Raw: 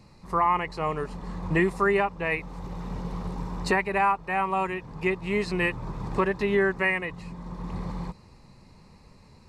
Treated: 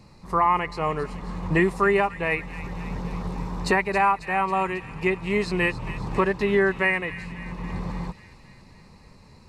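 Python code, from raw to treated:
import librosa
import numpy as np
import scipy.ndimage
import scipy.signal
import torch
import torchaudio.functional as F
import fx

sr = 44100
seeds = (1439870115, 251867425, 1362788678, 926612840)

y = fx.echo_wet_highpass(x, sr, ms=272, feedback_pct=63, hz=2200.0, wet_db=-12)
y = y * librosa.db_to_amplitude(2.5)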